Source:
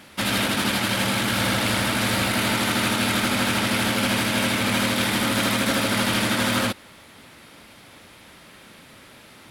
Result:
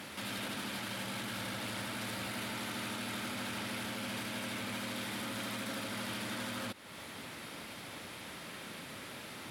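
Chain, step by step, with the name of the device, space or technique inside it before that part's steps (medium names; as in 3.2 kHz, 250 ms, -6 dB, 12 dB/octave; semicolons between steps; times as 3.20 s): podcast mastering chain (high-pass 87 Hz; compression 2.5:1, threshold -38 dBFS, peak gain reduction 12.5 dB; peak limiter -32.5 dBFS, peak gain reduction 9 dB; trim +1.5 dB; MP3 112 kbps 48 kHz)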